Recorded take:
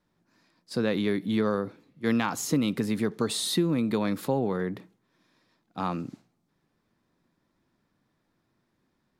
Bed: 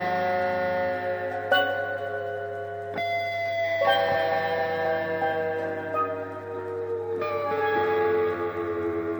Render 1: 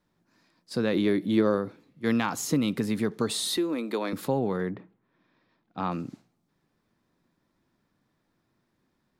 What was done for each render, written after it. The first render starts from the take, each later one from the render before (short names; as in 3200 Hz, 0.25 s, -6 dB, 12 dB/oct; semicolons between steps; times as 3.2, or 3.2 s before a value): 0.93–1.58 small resonant body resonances 340/560 Hz, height 9 dB; 3.57–4.13 HPF 280 Hz 24 dB/oct; 4.7–5.9 LPF 1900 Hz -> 4200 Hz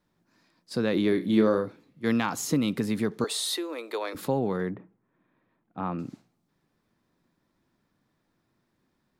1.09–1.66 flutter echo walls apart 5.5 m, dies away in 0.22 s; 3.24–4.15 HPF 400 Hz 24 dB/oct; 4.74–5.99 air absorption 450 m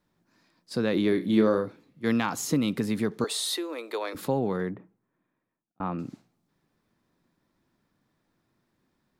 4.59–5.8 fade out linear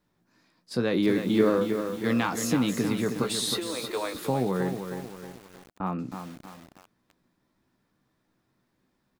doubler 16 ms -8.5 dB; lo-fi delay 0.315 s, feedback 55%, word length 7-bit, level -7 dB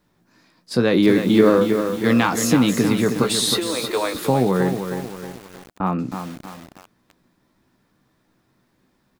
gain +8.5 dB; limiter -2 dBFS, peak gain reduction 2 dB